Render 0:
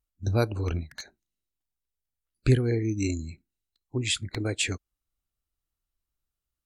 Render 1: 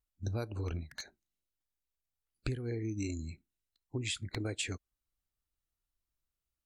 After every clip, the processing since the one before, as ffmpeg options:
ffmpeg -i in.wav -af "acompressor=threshold=-29dB:ratio=12,volume=-3.5dB" out.wav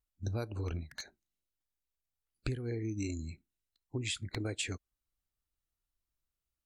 ffmpeg -i in.wav -af anull out.wav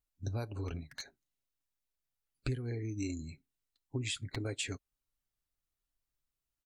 ffmpeg -i in.wav -af "aecho=1:1:7.3:0.41,volume=-1.5dB" out.wav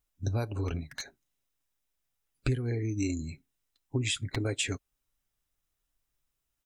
ffmpeg -i in.wav -af "bandreject=frequency=4400:width=10,volume=6.5dB" out.wav

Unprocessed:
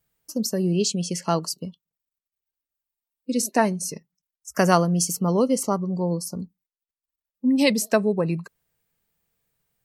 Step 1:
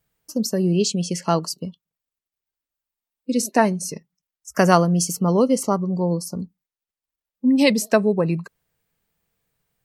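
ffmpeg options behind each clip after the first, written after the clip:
ffmpeg -i in.wav -af "highshelf=frequency=5800:gain=-4.5,volume=3dB" out.wav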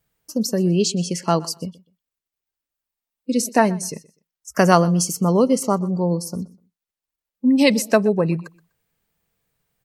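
ffmpeg -i in.wav -af "aecho=1:1:124|248:0.0841|0.0177,volume=1dB" out.wav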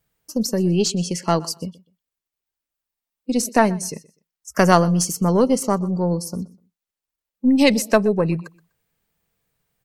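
ffmpeg -i in.wav -af "aeval=exprs='0.891*(cos(1*acos(clip(val(0)/0.891,-1,1)))-cos(1*PI/2))+0.0562*(cos(4*acos(clip(val(0)/0.891,-1,1)))-cos(4*PI/2))':channel_layout=same" out.wav

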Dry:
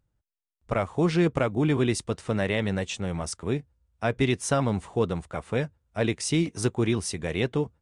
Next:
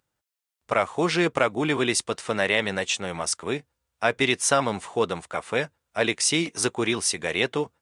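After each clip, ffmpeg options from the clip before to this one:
ffmpeg -i in.wav -af "highpass=frequency=880:poles=1,volume=8.5dB" out.wav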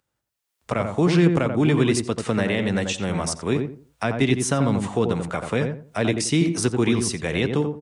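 ffmpeg -i in.wav -filter_complex "[0:a]acrossover=split=280[link_01][link_02];[link_02]acompressor=threshold=-41dB:ratio=3[link_03];[link_01][link_03]amix=inputs=2:normalize=0,asplit=2[link_04][link_05];[link_05]adelay=87,lowpass=frequency=1100:poles=1,volume=-4dB,asplit=2[link_06][link_07];[link_07]adelay=87,lowpass=frequency=1100:poles=1,volume=0.27,asplit=2[link_08][link_09];[link_09]adelay=87,lowpass=frequency=1100:poles=1,volume=0.27,asplit=2[link_10][link_11];[link_11]adelay=87,lowpass=frequency=1100:poles=1,volume=0.27[link_12];[link_06][link_08][link_10][link_12]amix=inputs=4:normalize=0[link_13];[link_04][link_13]amix=inputs=2:normalize=0,dynaudnorm=framelen=200:gausssize=5:maxgain=11dB" out.wav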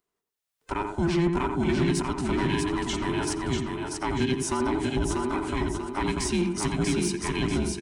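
ffmpeg -i in.wav -filter_complex "[0:a]afftfilt=real='real(if(between(b,1,1008),(2*floor((b-1)/24)+1)*24-b,b),0)':imag='imag(if(between(b,1,1008),(2*floor((b-1)/24)+1)*24-b,b),0)*if(between(b,1,1008),-1,1)':win_size=2048:overlap=0.75,asplit=2[link_01][link_02];[link_02]aecho=0:1:640|1280|1920|2560|3200:0.631|0.259|0.106|0.0435|0.0178[link_03];[link_01][link_03]amix=inputs=2:normalize=0,asoftclip=type=tanh:threshold=-11dB,volume=-5dB" out.wav

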